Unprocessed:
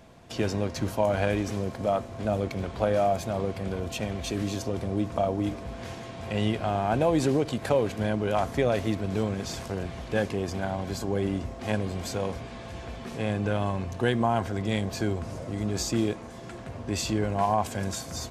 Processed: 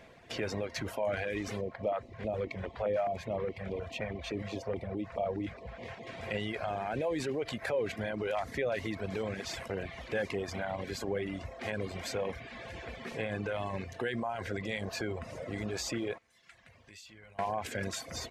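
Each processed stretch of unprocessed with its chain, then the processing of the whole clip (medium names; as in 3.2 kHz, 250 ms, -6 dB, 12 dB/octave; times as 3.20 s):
1.61–6.07 s: low-pass 2.1 kHz 6 dB/octave + LFO notch square 4.8 Hz 300–1500 Hz
16.18–17.39 s: amplifier tone stack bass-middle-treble 5-5-5 + de-hum 59.58 Hz, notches 36 + compression 4:1, threshold -47 dBFS
whole clip: peak limiter -21.5 dBFS; graphic EQ 500/2000/4000 Hz +7/+12/+3 dB; reverb removal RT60 0.86 s; trim -6.5 dB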